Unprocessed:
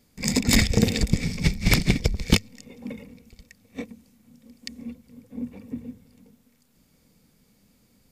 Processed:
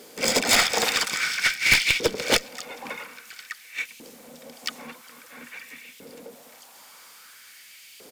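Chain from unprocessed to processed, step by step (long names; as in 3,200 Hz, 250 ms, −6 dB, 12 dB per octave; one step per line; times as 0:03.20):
pitch-shifted copies added −7 semitones −6 dB, +3 semitones −15 dB
auto-filter high-pass saw up 0.5 Hz 410–2,700 Hz
asymmetric clip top −20 dBFS
power curve on the samples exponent 0.7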